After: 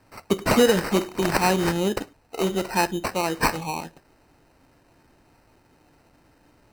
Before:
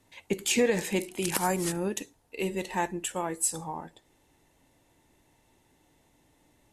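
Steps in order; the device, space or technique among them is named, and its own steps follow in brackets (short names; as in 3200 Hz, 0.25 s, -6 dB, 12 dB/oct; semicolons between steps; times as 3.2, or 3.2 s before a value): crushed at another speed (playback speed 0.5×; sample-and-hold 26×; playback speed 2×); gain +7 dB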